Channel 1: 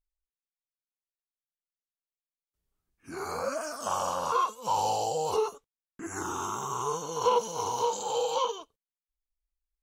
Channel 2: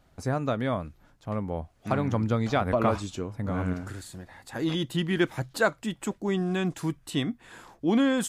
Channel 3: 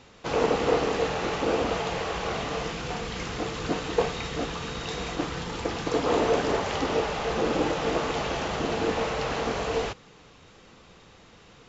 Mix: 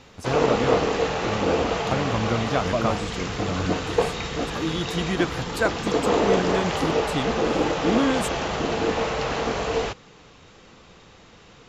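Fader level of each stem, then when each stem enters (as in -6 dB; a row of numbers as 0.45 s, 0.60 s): mute, +0.5 dB, +3.0 dB; mute, 0.00 s, 0.00 s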